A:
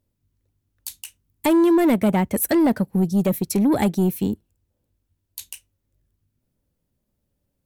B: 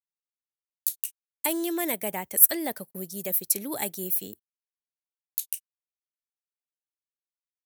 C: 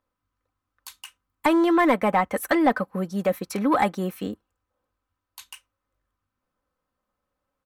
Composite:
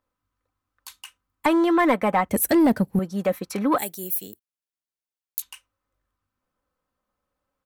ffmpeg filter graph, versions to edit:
-filter_complex "[2:a]asplit=3[s0][s1][s2];[s0]atrim=end=2.292[s3];[0:a]atrim=start=2.288:end=2.992[s4];[s1]atrim=start=2.988:end=3.782[s5];[1:a]atrim=start=3.778:end=5.422[s6];[s2]atrim=start=5.418[s7];[s3][s4]acrossfade=d=0.004:c1=hsin:c2=hsin[s8];[s8][s5]acrossfade=d=0.004:c1=hsin:c2=hsin[s9];[s9][s6]acrossfade=d=0.004:c1=hsin:c2=hsin[s10];[s10][s7]acrossfade=d=0.004:c1=hsin:c2=hsin"

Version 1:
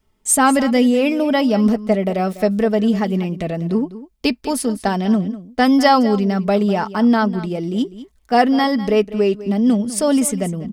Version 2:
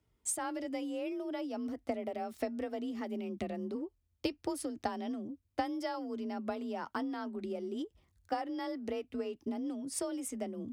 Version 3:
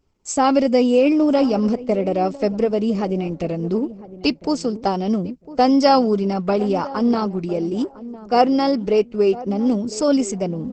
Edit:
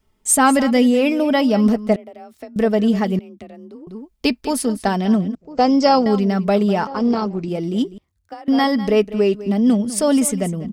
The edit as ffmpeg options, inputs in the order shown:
-filter_complex "[1:a]asplit=3[s0][s1][s2];[2:a]asplit=2[s3][s4];[0:a]asplit=6[s5][s6][s7][s8][s9][s10];[s5]atrim=end=1.962[s11];[s0]atrim=start=1.958:end=2.562[s12];[s6]atrim=start=2.558:end=3.192[s13];[s1]atrim=start=3.188:end=3.872[s14];[s7]atrim=start=3.868:end=5.352[s15];[s3]atrim=start=5.348:end=6.062[s16];[s8]atrim=start=6.058:end=6.872[s17];[s4]atrim=start=6.868:end=7.482[s18];[s9]atrim=start=7.478:end=7.982[s19];[s2]atrim=start=7.978:end=8.482[s20];[s10]atrim=start=8.478[s21];[s11][s12]acrossfade=d=0.004:c1=hsin:c2=hsin[s22];[s22][s13]acrossfade=d=0.004:c1=hsin:c2=hsin[s23];[s23][s14]acrossfade=d=0.004:c1=hsin:c2=hsin[s24];[s24][s15]acrossfade=d=0.004:c1=hsin:c2=hsin[s25];[s25][s16]acrossfade=d=0.004:c1=hsin:c2=hsin[s26];[s26][s17]acrossfade=d=0.004:c1=hsin:c2=hsin[s27];[s27][s18]acrossfade=d=0.004:c1=hsin:c2=hsin[s28];[s28][s19]acrossfade=d=0.004:c1=hsin:c2=hsin[s29];[s29][s20]acrossfade=d=0.004:c1=hsin:c2=hsin[s30];[s30][s21]acrossfade=d=0.004:c1=hsin:c2=hsin"

